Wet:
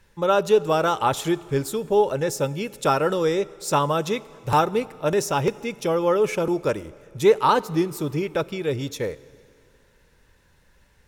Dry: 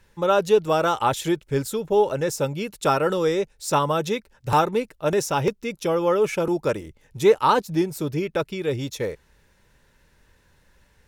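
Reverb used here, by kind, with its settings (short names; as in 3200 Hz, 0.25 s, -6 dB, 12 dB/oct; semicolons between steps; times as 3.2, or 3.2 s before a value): plate-style reverb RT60 2.4 s, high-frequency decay 0.95×, DRR 19 dB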